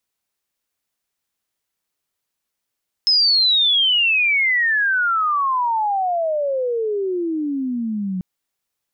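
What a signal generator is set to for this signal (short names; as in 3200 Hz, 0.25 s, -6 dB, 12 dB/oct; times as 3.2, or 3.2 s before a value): chirp logarithmic 5200 Hz -> 180 Hz -12 dBFS -> -21 dBFS 5.14 s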